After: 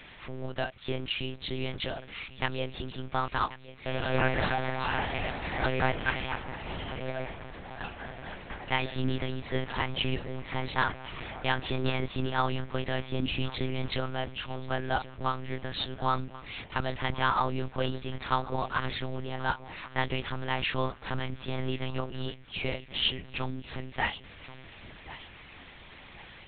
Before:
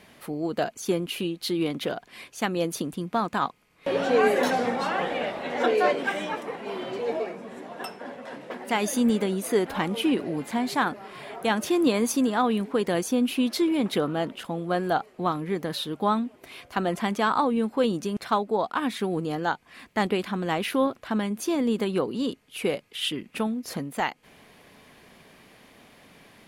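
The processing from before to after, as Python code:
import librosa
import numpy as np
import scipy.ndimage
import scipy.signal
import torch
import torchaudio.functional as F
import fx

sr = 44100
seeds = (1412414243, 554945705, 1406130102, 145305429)

p1 = fx.law_mismatch(x, sr, coded='mu')
p2 = fx.peak_eq(p1, sr, hz=360.0, db=-10.5, octaves=2.9)
p3 = p2 + fx.echo_feedback(p2, sr, ms=1082, feedback_pct=38, wet_db=-16.0, dry=0)
p4 = fx.lpc_monotone(p3, sr, seeds[0], pitch_hz=130.0, order=8)
y = F.gain(torch.from_numpy(p4), 1.5).numpy()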